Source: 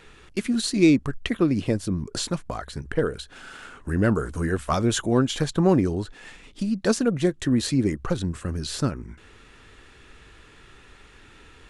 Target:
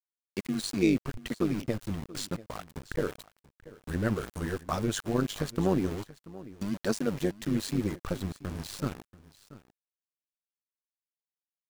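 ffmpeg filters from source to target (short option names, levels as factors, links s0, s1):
-af "aeval=exprs='val(0)*gte(abs(val(0)),0.0316)':c=same,aecho=1:1:684:0.119,tremolo=f=100:d=0.71,volume=0.596"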